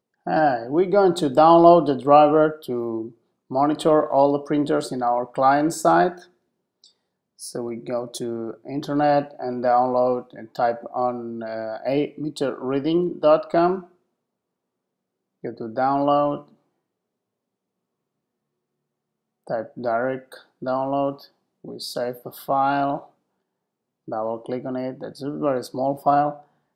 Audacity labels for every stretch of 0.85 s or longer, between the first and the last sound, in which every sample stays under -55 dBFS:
13.950000	15.430000	silence
16.560000	19.470000	silence
23.120000	24.080000	silence